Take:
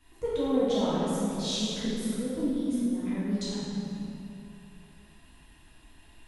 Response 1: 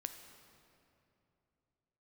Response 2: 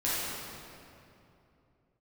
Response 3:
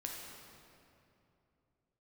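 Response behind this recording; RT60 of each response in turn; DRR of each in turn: 2; 2.8 s, 2.8 s, 2.8 s; 7.0 dB, -10.5 dB, -1.5 dB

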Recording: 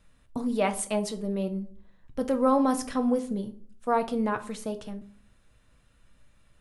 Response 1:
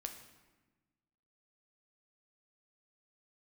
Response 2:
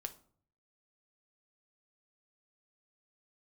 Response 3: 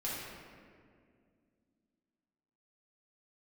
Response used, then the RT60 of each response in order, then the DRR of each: 2; 1.2 s, 0.55 s, 2.1 s; 4.5 dB, 7.0 dB, -8.0 dB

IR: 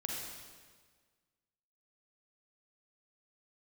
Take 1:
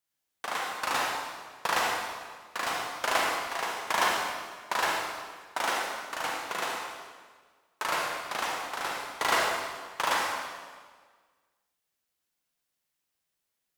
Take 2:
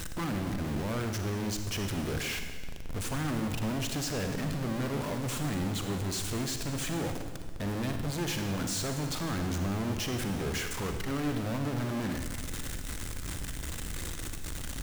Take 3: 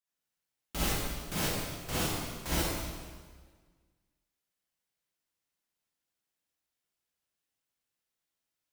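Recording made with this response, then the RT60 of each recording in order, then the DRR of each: 1; 1.6 s, 1.6 s, 1.6 s; -2.0 dB, 5.5 dB, -9.5 dB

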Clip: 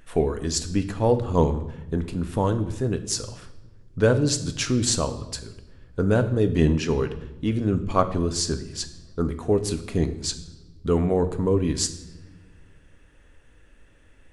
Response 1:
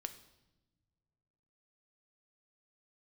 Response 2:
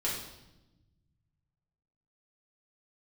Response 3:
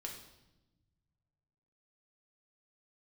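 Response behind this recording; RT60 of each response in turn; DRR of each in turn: 1; no single decay rate, 0.95 s, 1.0 s; 8.5 dB, -7.0 dB, -0.5 dB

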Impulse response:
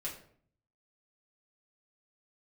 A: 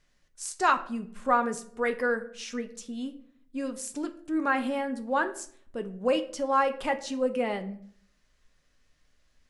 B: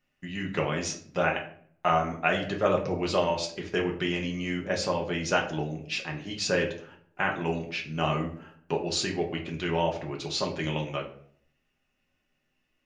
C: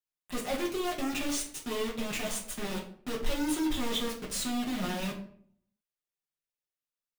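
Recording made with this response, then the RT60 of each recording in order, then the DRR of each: C; 0.55 s, 0.55 s, 0.55 s; 6.5 dB, -0.5 dB, -5.0 dB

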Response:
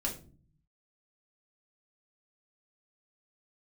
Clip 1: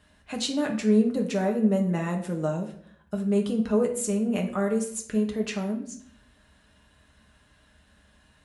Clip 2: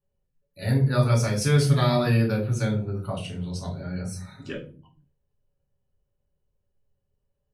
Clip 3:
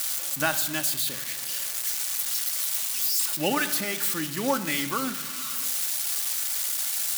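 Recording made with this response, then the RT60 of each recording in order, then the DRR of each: 2; 0.60 s, 0.40 s, 1.2 s; 1.0 dB, -2.0 dB, 6.5 dB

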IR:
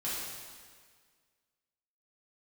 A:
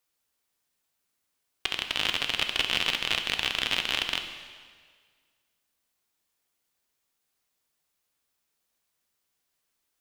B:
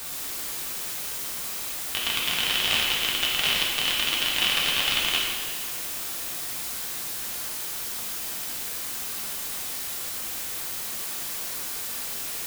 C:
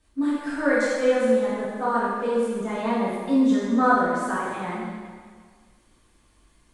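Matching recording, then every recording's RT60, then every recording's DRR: C; 1.7 s, 1.7 s, 1.7 s; 5.5 dB, -4.5 dB, -10.0 dB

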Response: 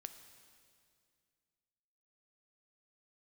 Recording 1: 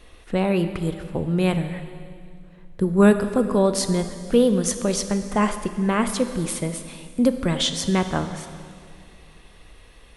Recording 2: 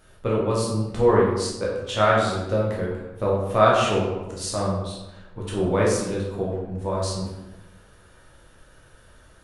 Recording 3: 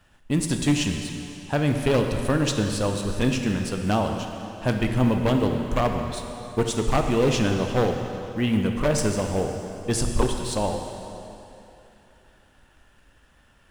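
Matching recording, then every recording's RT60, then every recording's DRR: 1; 2.2 s, 1.0 s, 3.0 s; 8.5 dB, -5.0 dB, 3.5 dB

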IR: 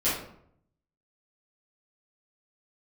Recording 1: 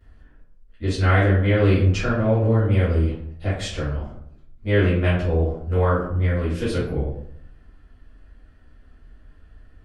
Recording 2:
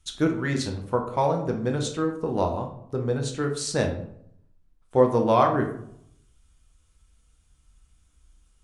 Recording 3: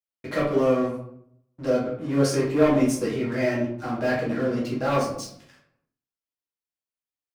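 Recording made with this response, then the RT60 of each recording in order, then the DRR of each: 1; 0.65 s, 0.65 s, 0.65 s; -12.5 dB, 2.5 dB, -5.5 dB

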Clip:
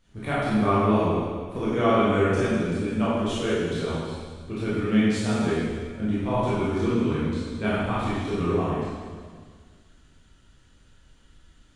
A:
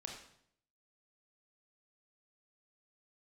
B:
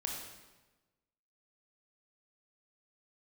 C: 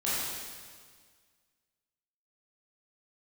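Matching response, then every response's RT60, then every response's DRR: C; 0.65 s, 1.2 s, 1.7 s; 0.5 dB, -0.5 dB, -10.5 dB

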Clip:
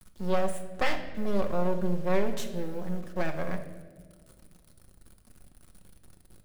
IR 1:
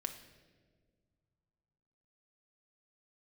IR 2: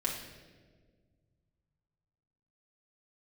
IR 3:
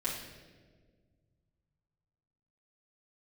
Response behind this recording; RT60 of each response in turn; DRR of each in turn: 1; 1.7 s, 1.6 s, 1.6 s; 4.5 dB, -4.5 dB, -9.0 dB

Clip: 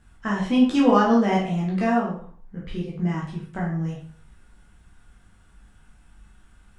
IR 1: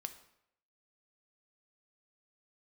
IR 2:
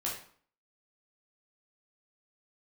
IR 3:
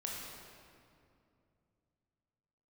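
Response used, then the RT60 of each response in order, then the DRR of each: 2; 0.75 s, 0.50 s, 2.5 s; 8.0 dB, -5.0 dB, -3.0 dB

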